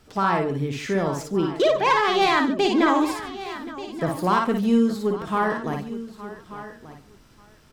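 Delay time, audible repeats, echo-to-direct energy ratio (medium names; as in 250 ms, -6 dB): 56 ms, 7, -2.5 dB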